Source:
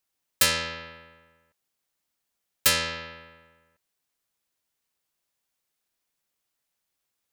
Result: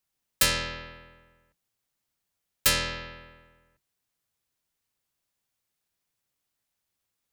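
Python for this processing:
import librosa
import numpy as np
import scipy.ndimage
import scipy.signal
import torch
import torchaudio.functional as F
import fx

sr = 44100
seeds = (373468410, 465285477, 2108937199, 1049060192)

y = fx.octave_divider(x, sr, octaves=1, level_db=3.0)
y = y * librosa.db_to_amplitude(-1.5)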